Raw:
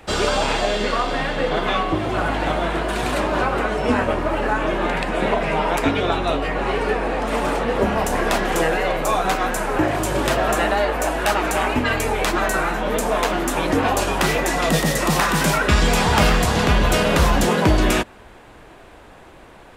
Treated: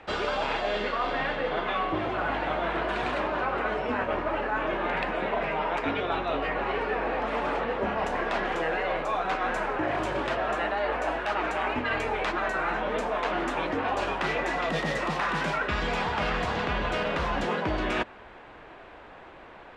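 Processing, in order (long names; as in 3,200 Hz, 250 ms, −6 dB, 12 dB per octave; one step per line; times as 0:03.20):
low-pass filter 2,900 Hz 12 dB per octave
low-shelf EQ 320 Hz −9.5 dB
reversed playback
downward compressor, threshold −25 dBFS, peak gain reduction 10.5 dB
reversed playback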